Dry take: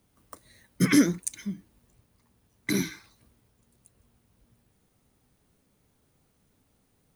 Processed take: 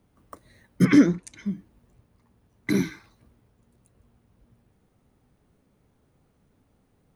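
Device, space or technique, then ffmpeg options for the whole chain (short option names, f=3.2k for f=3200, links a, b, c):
through cloth: -filter_complex "[0:a]asettb=1/sr,asplit=3[a][b][c];[a]atrim=end=0.854[d];[b]atrim=start=0.85:end=1.46,asetpts=PTS-STARTPTS,afade=t=in:d=0.004:c=qsin,afade=t=out:st=0.606:d=0.004:c=qsin,lowpass=6.3k[e];[c]atrim=start=1.456[f];[d][e]acrossfade=d=0.004:c1=hsin:c2=qsin[g];[g][f]acrossfade=d=0.004:c1=qsin:c2=hsin,highshelf=f=2.8k:g=-12.5,volume=4.5dB"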